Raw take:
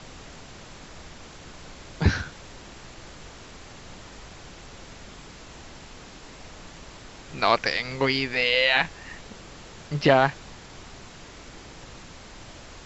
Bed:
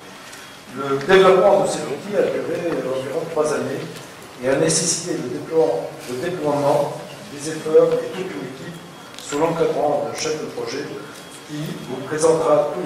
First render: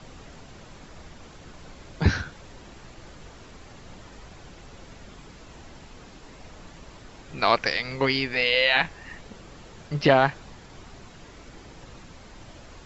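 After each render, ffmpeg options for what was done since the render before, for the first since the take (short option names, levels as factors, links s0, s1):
-af "afftdn=nr=6:nf=-46"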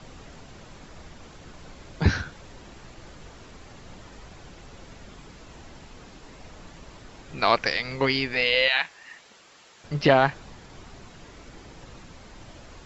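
-filter_complex "[0:a]asettb=1/sr,asplit=3[s0][s1][s2];[s0]atrim=end=8.684[s3];[s1]atrim=start=8.68:end=9.84,asetpts=PTS-STARTPTS,afade=t=in:d=0.004:c=qsin,afade=t=out:st=1.156:d=0.004:c=qsin,highpass=f=1500:p=1[s4];[s2]atrim=start=9.836[s5];[s3][s4]acrossfade=d=0.004:c1=hsin:c2=qsin[s6];[s6][s5]acrossfade=d=0.004:c1=qsin:c2=hsin"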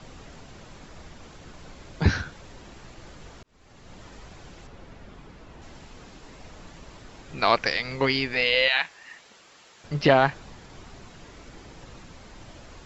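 -filter_complex "[0:a]asettb=1/sr,asplit=3[s0][s1][s2];[s0]atrim=end=4.674[s3];[s1]atrim=start=4.67:end=5.62,asetpts=PTS-STARTPTS,afade=t=in:d=0.004:c=qsin,afade=t=out:st=0.946:d=0.004:c=qsin,lowpass=f=2300:p=1[s4];[s2]atrim=start=5.616[s5];[s3][s4]acrossfade=d=0.004:c1=hsin:c2=qsin[s6];[s6][s5]acrossfade=d=0.004:c1=qsin:c2=hsin,asplit=2[s7][s8];[s7]atrim=end=3.43,asetpts=PTS-STARTPTS,afade=t=out:st=3.426:d=0.004:c=hsin[s9];[s8]atrim=start=3.43,asetpts=PTS-STARTPTS,afade=t=in:d=0.61[s10];[s9][s10]concat=n=2:v=0:a=1"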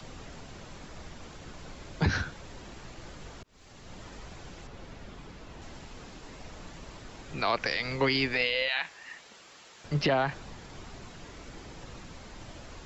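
-filter_complex "[0:a]acrossover=split=270|340|2800[s0][s1][s2][s3];[s3]acompressor=mode=upward:threshold=0.002:ratio=2.5[s4];[s0][s1][s2][s4]amix=inputs=4:normalize=0,alimiter=limit=0.15:level=0:latency=1:release=69"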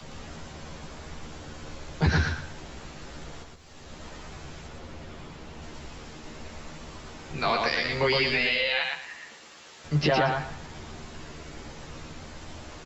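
-filter_complex "[0:a]asplit=2[s0][s1];[s1]adelay=13,volume=0.75[s2];[s0][s2]amix=inputs=2:normalize=0,asplit=2[s3][s4];[s4]aecho=0:1:115|230|345|460:0.708|0.184|0.0479|0.0124[s5];[s3][s5]amix=inputs=2:normalize=0"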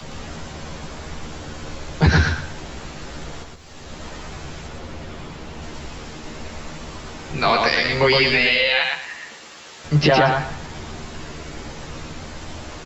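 -af "volume=2.51"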